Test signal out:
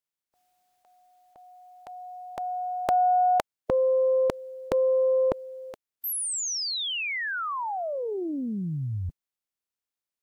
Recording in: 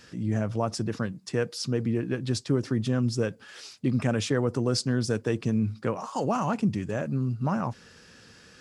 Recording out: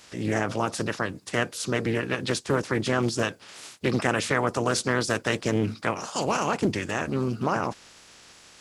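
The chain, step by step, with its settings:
ceiling on every frequency bin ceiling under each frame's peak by 20 dB
highs frequency-modulated by the lows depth 0.32 ms
level +1.5 dB

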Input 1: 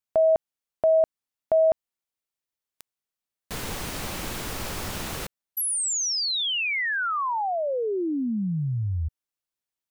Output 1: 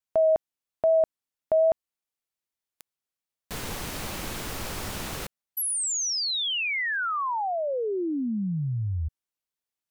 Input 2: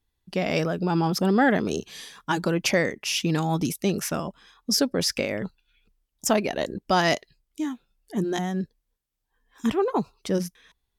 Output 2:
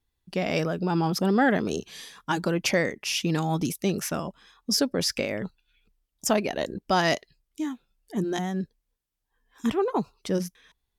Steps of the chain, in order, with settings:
pitch vibrato 2.5 Hz 20 cents
level −1.5 dB

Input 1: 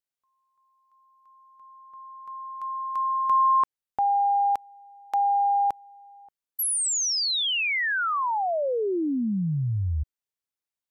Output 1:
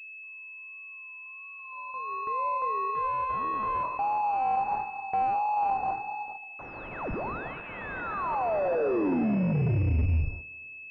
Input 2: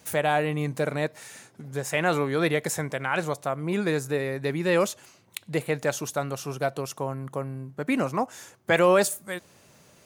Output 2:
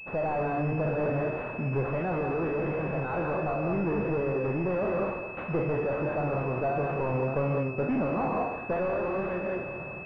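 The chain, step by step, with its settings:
peak hold with a decay on every bin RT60 0.41 s
reverb whose tail is shaped and stops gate 230 ms rising, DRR 4 dB
pitch vibrato 1.5 Hz 73 cents
gain into a clipping stage and back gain 27 dB
brickwall limiter −32 dBFS
on a send: feedback echo with a high-pass in the loop 210 ms, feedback 66%, high-pass 150 Hz, level −15 dB
on the sum: speech leveller within 5 dB 0.5 s
noise gate −45 dBFS, range −11 dB
switching amplifier with a slow clock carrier 2,600 Hz
level +7 dB

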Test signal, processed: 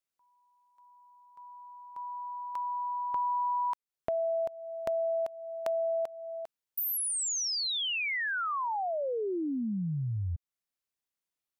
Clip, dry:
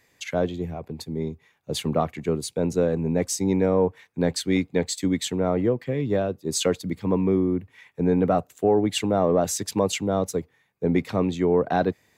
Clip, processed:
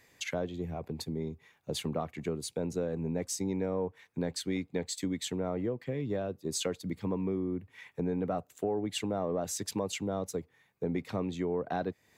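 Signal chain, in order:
downward compressor 2.5 to 1, threshold −35 dBFS

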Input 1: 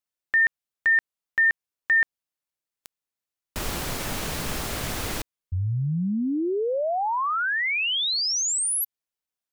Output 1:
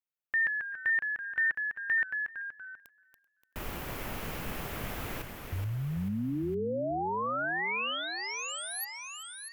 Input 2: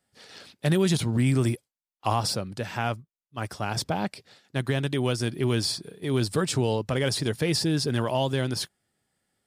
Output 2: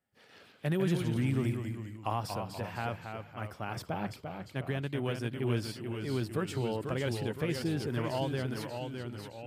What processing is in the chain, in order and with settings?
delay with pitch and tempo change per echo 113 ms, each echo −1 semitone, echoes 3, each echo −6 dB
flat-topped bell 6,000 Hz −9 dB
feedback echo with a high-pass in the loop 385 ms, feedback 26%, high-pass 160 Hz, level −23 dB
level −8 dB

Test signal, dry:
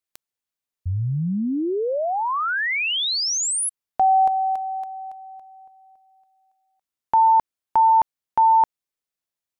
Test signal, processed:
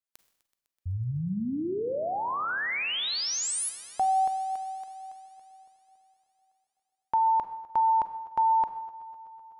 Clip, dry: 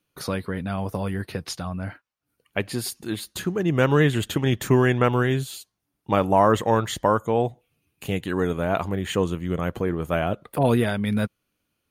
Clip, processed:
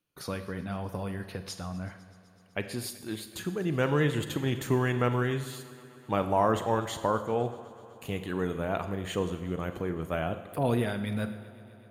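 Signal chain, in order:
echo machine with several playback heads 126 ms, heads first and second, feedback 73%, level −23.5 dB
four-comb reverb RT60 0.86 s, combs from 33 ms, DRR 10 dB
level −7.5 dB

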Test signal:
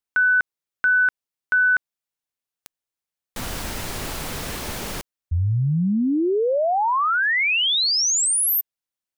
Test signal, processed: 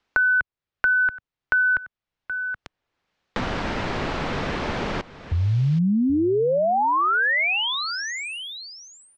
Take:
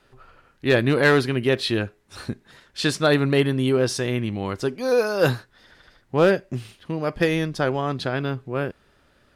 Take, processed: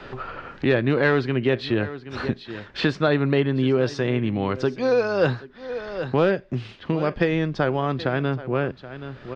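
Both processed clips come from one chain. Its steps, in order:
Gaussian smoothing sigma 2 samples
on a send: single-tap delay 775 ms −20 dB
on the sum: multiband upward and downward compressor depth 70%

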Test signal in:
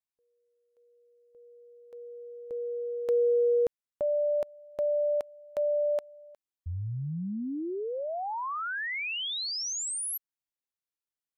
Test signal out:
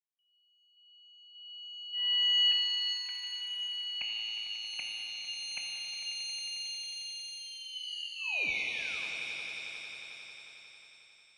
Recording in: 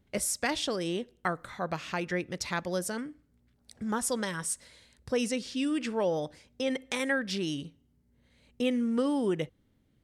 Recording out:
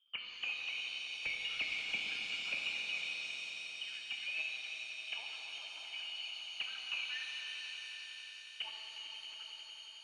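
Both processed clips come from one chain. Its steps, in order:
treble cut that deepens with the level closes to 400 Hz, closed at −28.5 dBFS
notch filter 370 Hz, Q 12
in parallel at 0 dB: downward compressor 12 to 1, threshold −39 dBFS
on the sum: envelope filter 200–2,500 Hz, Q 11, up, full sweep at −25.5 dBFS
phaser with its sweep stopped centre 980 Hz, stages 8
mid-hump overdrive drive 28 dB, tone 2,100 Hz, clips at −28.5 dBFS
echo that builds up and dies away 90 ms, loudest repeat 5, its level −13.5 dB
voice inversion scrambler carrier 3,400 Hz
reverb with rising layers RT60 3 s, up +7 semitones, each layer −8 dB, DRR 0 dB

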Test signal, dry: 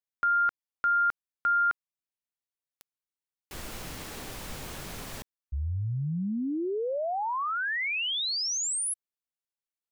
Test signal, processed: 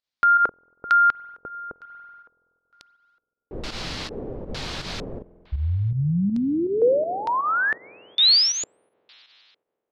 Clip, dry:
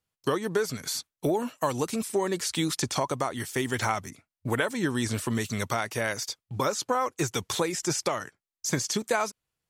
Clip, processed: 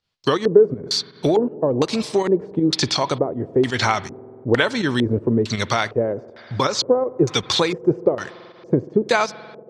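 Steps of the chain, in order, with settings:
spring reverb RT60 3.3 s, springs 47 ms, chirp 50 ms, DRR 17 dB
auto-filter low-pass square 1.1 Hz 460–4,400 Hz
fake sidechain pumping 81 BPM, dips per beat 2, −9 dB, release 97 ms
level +7.5 dB

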